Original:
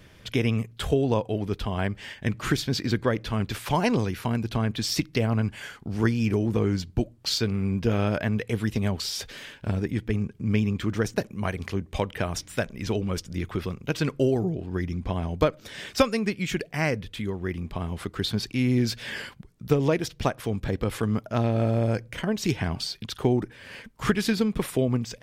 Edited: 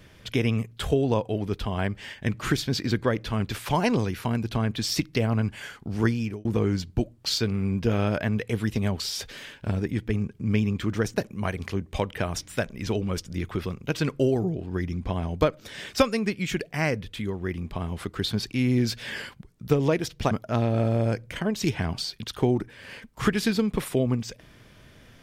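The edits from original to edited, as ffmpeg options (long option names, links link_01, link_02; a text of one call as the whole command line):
ffmpeg -i in.wav -filter_complex "[0:a]asplit=3[link_01][link_02][link_03];[link_01]atrim=end=6.45,asetpts=PTS-STARTPTS,afade=type=out:start_time=6.1:duration=0.35[link_04];[link_02]atrim=start=6.45:end=20.312,asetpts=PTS-STARTPTS,afade=type=in:duration=0.004:curve=hsin[link_05];[link_03]atrim=start=21.128[link_06];[link_04][link_05]concat=n=2:v=0:a=1[link_07];[link_07][link_06]acrossfade=duration=0.004:curve1=hsin:curve2=hsin" out.wav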